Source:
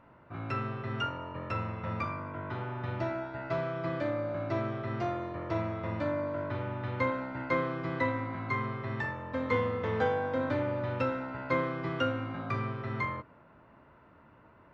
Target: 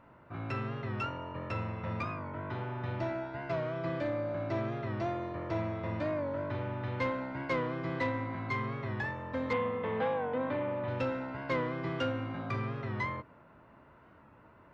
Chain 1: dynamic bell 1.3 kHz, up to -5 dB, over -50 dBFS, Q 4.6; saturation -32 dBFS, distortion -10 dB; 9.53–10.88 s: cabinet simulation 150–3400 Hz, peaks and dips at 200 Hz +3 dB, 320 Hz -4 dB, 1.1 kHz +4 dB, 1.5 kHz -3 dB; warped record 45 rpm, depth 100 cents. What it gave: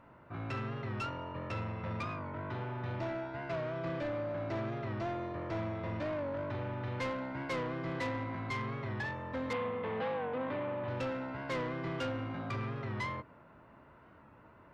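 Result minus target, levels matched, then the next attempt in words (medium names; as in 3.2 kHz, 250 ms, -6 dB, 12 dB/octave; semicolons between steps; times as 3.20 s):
saturation: distortion +7 dB
dynamic bell 1.3 kHz, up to -5 dB, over -50 dBFS, Q 4.6; saturation -24.5 dBFS, distortion -17 dB; 9.53–10.88 s: cabinet simulation 150–3400 Hz, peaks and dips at 200 Hz +3 dB, 320 Hz -4 dB, 1.1 kHz +4 dB, 1.5 kHz -3 dB; warped record 45 rpm, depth 100 cents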